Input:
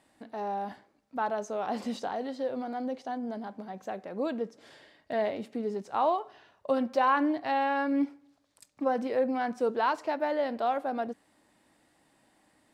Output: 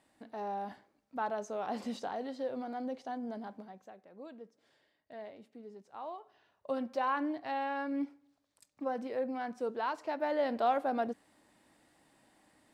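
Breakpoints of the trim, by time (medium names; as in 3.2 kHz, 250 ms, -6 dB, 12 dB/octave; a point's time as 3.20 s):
3.54 s -4.5 dB
3.95 s -17 dB
6.05 s -17 dB
6.73 s -7.5 dB
9.92 s -7.5 dB
10.53 s -0.5 dB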